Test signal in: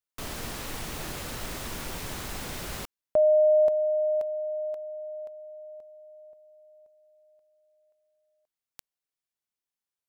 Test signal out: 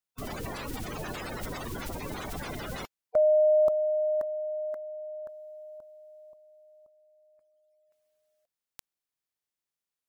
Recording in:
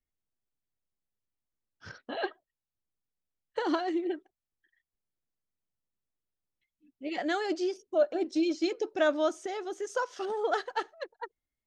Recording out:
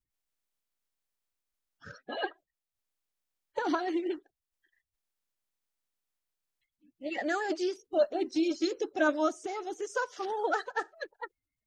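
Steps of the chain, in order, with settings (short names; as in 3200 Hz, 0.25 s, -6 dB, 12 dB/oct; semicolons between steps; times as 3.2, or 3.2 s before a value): bin magnitudes rounded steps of 30 dB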